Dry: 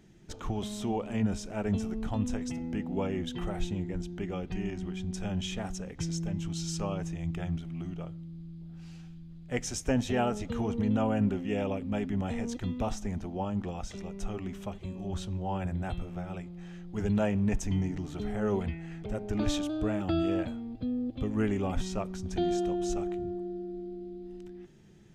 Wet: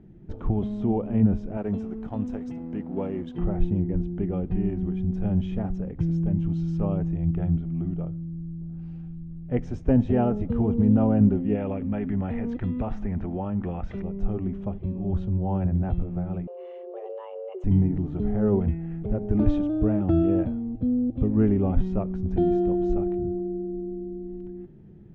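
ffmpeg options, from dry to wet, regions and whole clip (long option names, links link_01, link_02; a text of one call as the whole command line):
ffmpeg -i in.wav -filter_complex "[0:a]asettb=1/sr,asplit=3[link_01][link_02][link_03];[link_01]atrim=end=1.574[link_04];[link_02]atrim=start=1.57:end=3.38,asetpts=PTS-STARTPTS,afade=type=in:duration=0.004:curve=qsin,afade=type=out:start_time=1.806:duration=0.004:curve=qsin,aemphasis=mode=production:type=bsi,aeval=exprs='sgn(val(0))*max(abs(val(0))-0.00299,0)':channel_layout=same[link_05];[link_03]atrim=start=3.376[link_06];[link_04][link_05]acrossfade=duration=0.004:curve1=hsin:curve2=qsin[link_07];[link_07][link_06]acrossfade=duration=0.004:curve1=qsin:curve2=hsin,asettb=1/sr,asplit=3[link_08][link_09][link_10];[link_08]atrim=end=11.554[link_11];[link_09]atrim=start=11.55:end=14.02,asetpts=PTS-STARTPTS,afade=type=in:duration=0.004:curve=qsin,afade=type=out:start_time=2.466:duration=0.004:curve=qsin,equalizer=frequency=1900:width_type=o:width=2:gain=12,acompressor=threshold=-34dB:ratio=2:attack=3.2:release=140:knee=1:detection=peak[link_12];[link_10]atrim=start=14.016[link_13];[link_11][link_12]acrossfade=duration=0.004:curve1=hsin:curve2=qsin[link_14];[link_14][link_13]acrossfade=duration=0.004:curve1=qsin:curve2=hsin,asettb=1/sr,asplit=3[link_15][link_16][link_17];[link_15]atrim=end=16.474[link_18];[link_16]atrim=start=16.47:end=17.64,asetpts=PTS-STARTPTS,afade=type=in:duration=0.004:curve=qsin,afade=type=out:start_time=1.166:duration=0.004:curve=qsin,equalizer=frequency=2500:width=4:gain=11.5,acompressor=threshold=-39dB:ratio=5:attack=3.2:release=140:knee=1:detection=peak,afreqshift=350[link_19];[link_17]atrim=start=17.636[link_20];[link_18][link_19]acrossfade=duration=0.004:curve1=hsin:curve2=qsin[link_21];[link_21][link_20]acrossfade=duration=0.004:curve1=qsin:curve2=hsin,lowpass=2600,tiltshelf=frequency=880:gain=10" out.wav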